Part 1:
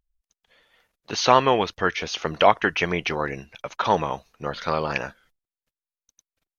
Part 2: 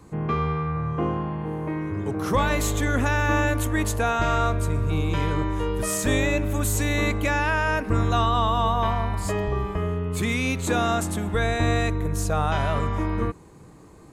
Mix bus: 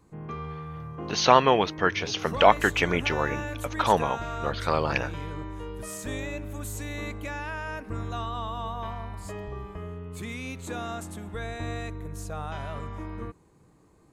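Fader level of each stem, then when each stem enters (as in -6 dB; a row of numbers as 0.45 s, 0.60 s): -1.0 dB, -11.5 dB; 0.00 s, 0.00 s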